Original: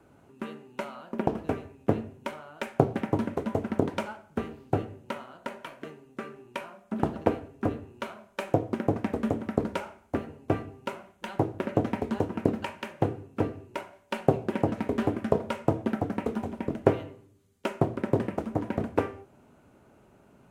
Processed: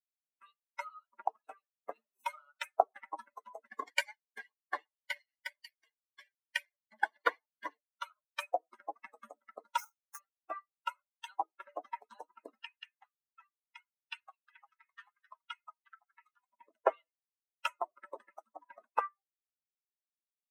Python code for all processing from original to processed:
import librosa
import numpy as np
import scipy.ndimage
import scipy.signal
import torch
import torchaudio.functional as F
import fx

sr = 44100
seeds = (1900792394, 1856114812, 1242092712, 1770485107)

y = fx.chain(x, sr, fx.law_mismatch(coded='mu'),
    fx.pre_swell(db_per_s=67.0), at=(1.95, 2.52))
y = fx.chain(y, sr, fx.lower_of_two(delay_ms=0.4),
    fx.notch_comb(f0_hz=1300.0),
    fx.leveller(passes=1), at=(3.65, 7.79))
y = fx.chain(y, sr, fx.ellip_highpass(hz=860.0, order=4, stop_db=40),
    fx.high_shelf(hz=6000.0, db=9.5),
    fx.sample_hold(seeds[0], rate_hz=8000.0, jitter_pct=20), at=(9.78, 10.19))
y = fx.chain(y, sr, fx.highpass(hz=1300.0, slope=12),
    fx.high_shelf(hz=4700.0, db=-8.0), at=(12.64, 16.52))
y = fx.bin_expand(y, sr, power=3.0)
y = scipy.signal.sosfilt(scipy.signal.butter(4, 710.0, 'highpass', fs=sr, output='sos'), y)
y = fx.dynamic_eq(y, sr, hz=1400.0, q=0.89, threshold_db=-52.0, ratio=4.0, max_db=3)
y = F.gain(torch.from_numpy(y), 6.5).numpy()